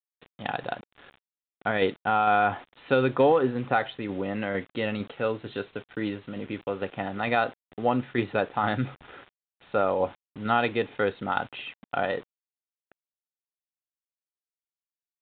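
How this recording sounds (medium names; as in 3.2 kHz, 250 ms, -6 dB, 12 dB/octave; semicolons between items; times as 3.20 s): tremolo saw down 2.2 Hz, depth 35%; a quantiser's noise floor 8-bit, dither none; µ-law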